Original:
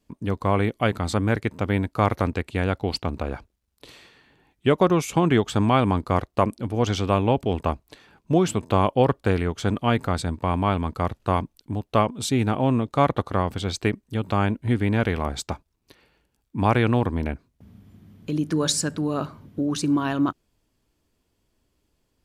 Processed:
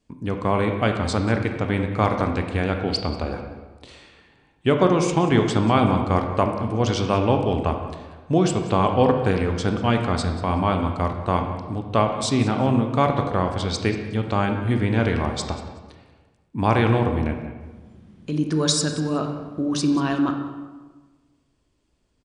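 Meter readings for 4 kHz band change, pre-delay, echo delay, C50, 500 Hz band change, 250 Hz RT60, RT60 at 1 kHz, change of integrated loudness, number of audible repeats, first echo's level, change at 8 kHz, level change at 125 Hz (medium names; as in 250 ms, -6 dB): +2.5 dB, 20 ms, 186 ms, 5.5 dB, +1.5 dB, 1.5 s, 1.3 s, +1.5 dB, 1, -17.0 dB, +1.0 dB, +1.5 dB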